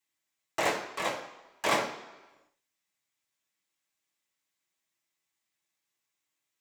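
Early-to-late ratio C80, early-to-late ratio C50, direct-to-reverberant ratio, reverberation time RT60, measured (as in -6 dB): 10.5 dB, 8.0 dB, -6.5 dB, 1.1 s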